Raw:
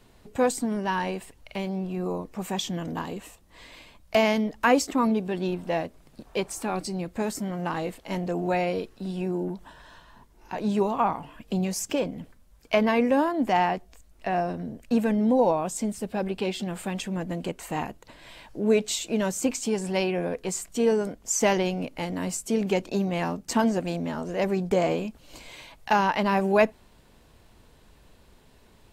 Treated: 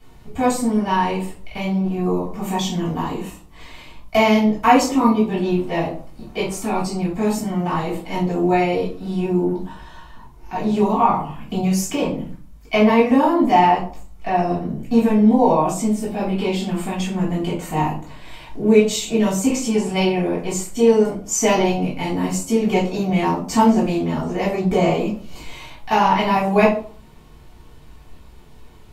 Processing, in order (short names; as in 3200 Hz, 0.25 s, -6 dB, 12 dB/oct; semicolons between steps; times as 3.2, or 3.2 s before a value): reverb RT60 0.50 s, pre-delay 3 ms, DRR -7 dB; dynamic EQ 1500 Hz, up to -5 dB, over -38 dBFS, Q 5; gain -6 dB